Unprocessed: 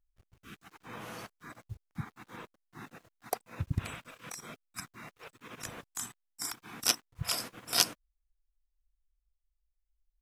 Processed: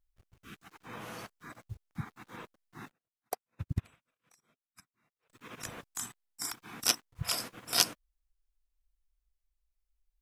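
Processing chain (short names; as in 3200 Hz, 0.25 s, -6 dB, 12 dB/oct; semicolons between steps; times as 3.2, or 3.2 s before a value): 2.91–5.3 upward expander 2.5:1, over -50 dBFS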